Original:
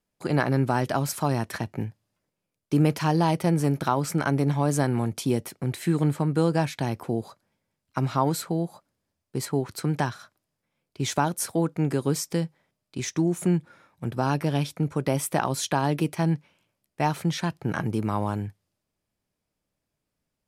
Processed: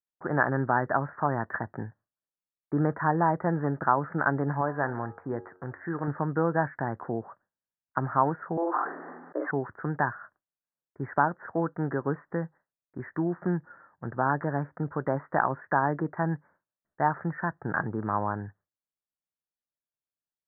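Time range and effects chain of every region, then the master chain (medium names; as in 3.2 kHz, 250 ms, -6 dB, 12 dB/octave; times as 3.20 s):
4.61–6.08 s: peaking EQ 190 Hz -6.5 dB 1.6 oct + de-hum 91.63 Hz, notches 18
8.57–9.51 s: frequency shift +170 Hz + doubling 45 ms -6 dB + decay stretcher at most 33 dB/s
whole clip: gate with hold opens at -53 dBFS; steep low-pass 1.8 kHz 96 dB/octave; tilt shelf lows -7 dB, about 720 Hz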